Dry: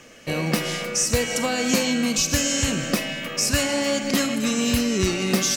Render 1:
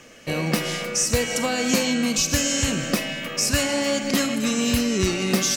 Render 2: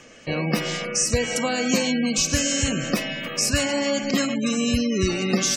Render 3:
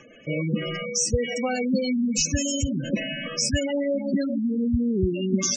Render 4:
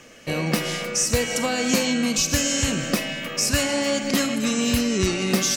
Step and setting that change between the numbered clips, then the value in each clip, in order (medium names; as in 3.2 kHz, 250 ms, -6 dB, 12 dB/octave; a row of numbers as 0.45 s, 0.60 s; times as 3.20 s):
spectral gate, under each frame's peak: -55 dB, -25 dB, -10 dB, -45 dB